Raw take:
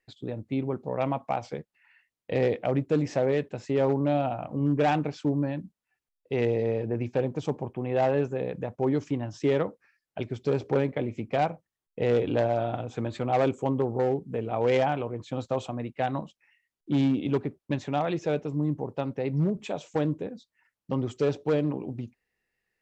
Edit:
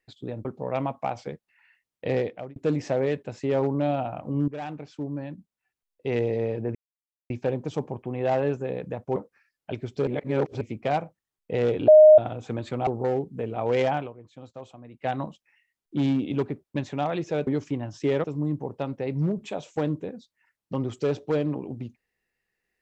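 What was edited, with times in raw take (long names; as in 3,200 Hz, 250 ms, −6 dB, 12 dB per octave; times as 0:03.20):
0:00.45–0:00.71: remove
0:02.40–0:02.82: fade out
0:04.74–0:06.37: fade in, from −13.5 dB
0:07.01: splice in silence 0.55 s
0:08.87–0:09.64: move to 0:18.42
0:10.55–0:11.09: reverse
0:12.36–0:12.66: beep over 617 Hz −8 dBFS
0:13.35–0:13.82: remove
0:14.92–0:16.02: duck −12.5 dB, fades 0.16 s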